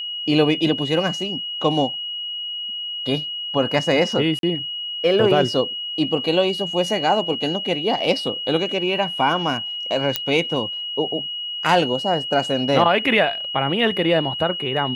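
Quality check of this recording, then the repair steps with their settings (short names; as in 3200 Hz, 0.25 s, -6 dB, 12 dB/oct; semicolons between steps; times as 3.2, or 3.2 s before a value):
tone 2900 Hz -26 dBFS
4.39–4.43 gap 42 ms
10.16 pop -3 dBFS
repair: de-click; notch 2900 Hz, Q 30; interpolate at 4.39, 42 ms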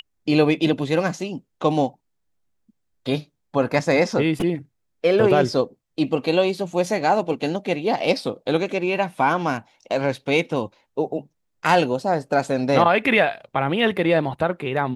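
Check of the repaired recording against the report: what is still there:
none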